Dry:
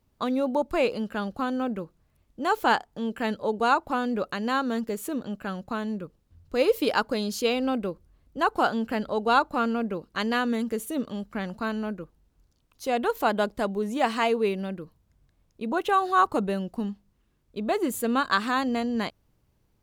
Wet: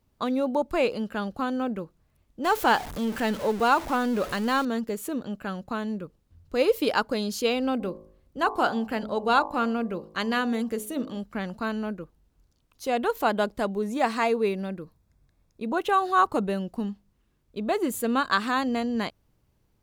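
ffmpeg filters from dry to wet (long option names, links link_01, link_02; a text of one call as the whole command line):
ffmpeg -i in.wav -filter_complex "[0:a]asettb=1/sr,asplit=3[link_01][link_02][link_03];[link_01]atrim=end=2.444[link_04];[link_02]atrim=start=2.44:end=4.65,asetpts=PTS-STARTPTS,afade=type=in:duration=0.004:curve=qsin,afade=type=out:start_time=2.206:duration=0.004:curve=qsin,aeval=exprs='val(0)+0.5*0.0251*sgn(val(0))':channel_layout=same[link_05];[link_03]atrim=start=4.646[link_06];[link_04][link_05]acrossfade=duration=0.004:curve1=hsin:curve2=qsin[link_07];[link_07][link_06]acrossfade=duration=0.004:curve1=qsin:curve2=hsin,asplit=3[link_08][link_09][link_10];[link_08]afade=type=out:start_time=7.79:duration=0.02[link_11];[link_09]bandreject=frequency=53.14:width_type=h:width=4,bandreject=frequency=106.28:width_type=h:width=4,bandreject=frequency=159.42:width_type=h:width=4,bandreject=frequency=212.56:width_type=h:width=4,bandreject=frequency=265.7:width_type=h:width=4,bandreject=frequency=318.84:width_type=h:width=4,bandreject=frequency=371.98:width_type=h:width=4,bandreject=frequency=425.12:width_type=h:width=4,bandreject=frequency=478.26:width_type=h:width=4,bandreject=frequency=531.4:width_type=h:width=4,bandreject=frequency=584.54:width_type=h:width=4,bandreject=frequency=637.68:width_type=h:width=4,bandreject=frequency=690.82:width_type=h:width=4,bandreject=frequency=743.96:width_type=h:width=4,bandreject=frequency=797.1:width_type=h:width=4,bandreject=frequency=850.24:width_type=h:width=4,bandreject=frequency=903.38:width_type=h:width=4,bandreject=frequency=956.52:width_type=h:width=4,bandreject=frequency=1009.66:width_type=h:width=4,bandreject=frequency=1062.8:width_type=h:width=4,bandreject=frequency=1115.94:width_type=h:width=4,bandreject=frequency=1169.08:width_type=h:width=4,afade=type=in:start_time=7.79:duration=0.02,afade=type=out:start_time=11.18:duration=0.02[link_12];[link_10]afade=type=in:start_time=11.18:duration=0.02[link_13];[link_11][link_12][link_13]amix=inputs=3:normalize=0,asettb=1/sr,asplit=3[link_14][link_15][link_16];[link_14]atrim=end=13.814[link_17];[link_15]atrim=start=13.81:end=15.66,asetpts=PTS-STARTPTS,afade=type=in:duration=0.004:curve=qsin,afade=type=out:start_time=1.846:duration=0.004:curve=qsin,bandreject=frequency=3000:width=8.1[link_18];[link_16]atrim=start=15.656[link_19];[link_17][link_18]acrossfade=duration=0.004:curve1=hsin:curve2=qsin[link_20];[link_20][link_19]acrossfade=duration=0.004:curve1=qsin:curve2=hsin" out.wav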